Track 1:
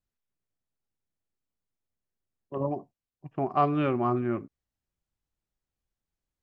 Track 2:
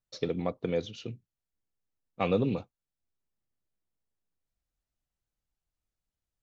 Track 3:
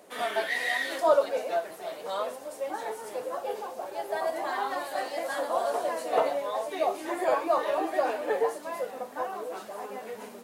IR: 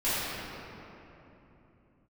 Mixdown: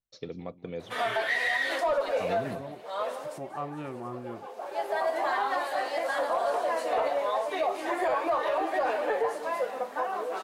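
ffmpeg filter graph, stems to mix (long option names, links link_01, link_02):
-filter_complex "[0:a]volume=-12dB,asplit=2[link_01][link_02];[1:a]volume=-7.5dB,asplit=2[link_03][link_04];[link_04]volume=-17.5dB[link_05];[2:a]asplit=2[link_06][link_07];[link_07]highpass=frequency=720:poles=1,volume=12dB,asoftclip=type=tanh:threshold=-10.5dB[link_08];[link_06][link_08]amix=inputs=2:normalize=0,lowpass=frequency=2700:poles=1,volume=-6dB,adelay=800,volume=-0.5dB,asplit=2[link_09][link_10];[link_10]volume=-17dB[link_11];[link_02]apad=whole_len=495398[link_12];[link_09][link_12]sidechaincompress=threshold=-53dB:ratio=8:attack=49:release=403[link_13];[link_05][link_11]amix=inputs=2:normalize=0,aecho=0:1:188:1[link_14];[link_01][link_03][link_13][link_14]amix=inputs=4:normalize=0,alimiter=limit=-19.5dB:level=0:latency=1:release=115"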